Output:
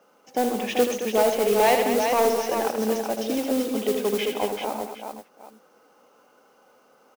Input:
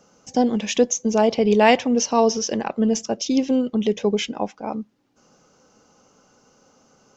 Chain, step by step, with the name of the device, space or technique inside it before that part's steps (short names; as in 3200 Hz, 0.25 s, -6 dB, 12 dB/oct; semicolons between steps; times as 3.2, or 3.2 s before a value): carbon microphone (BPF 380–2700 Hz; soft clip -13.5 dBFS, distortion -13 dB; modulation noise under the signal 14 dB); tapped delay 78/131/147/219/387/764 ms -7/-17/-16.5/-9.5/-5.5/-16 dB